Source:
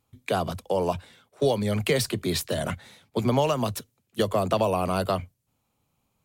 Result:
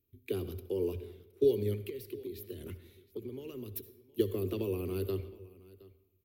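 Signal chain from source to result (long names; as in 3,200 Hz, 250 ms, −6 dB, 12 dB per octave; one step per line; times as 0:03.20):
drawn EQ curve 100 Hz 0 dB, 160 Hz −14 dB, 390 Hz +8 dB, 640 Hz −26 dB, 910 Hz −23 dB, 1,600 Hz −17 dB, 2,500 Hz −8 dB, 5,200 Hz −13 dB, 8,500 Hz −17 dB, 13,000 Hz +6 dB
0:01.74–0:03.76: downward compressor 6 to 1, threshold −35 dBFS, peak gain reduction 16 dB
single-tap delay 717 ms −21 dB
convolution reverb RT60 0.85 s, pre-delay 58 ms, DRR 13 dB
level −4.5 dB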